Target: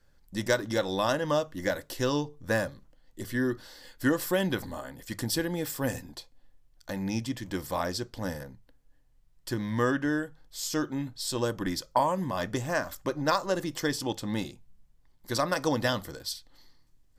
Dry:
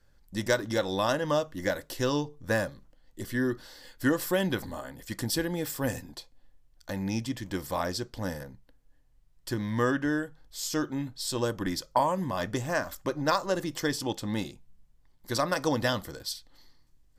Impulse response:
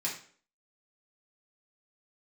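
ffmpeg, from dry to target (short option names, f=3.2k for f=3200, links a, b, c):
-af "bandreject=f=50:t=h:w=6,bandreject=f=100:t=h:w=6"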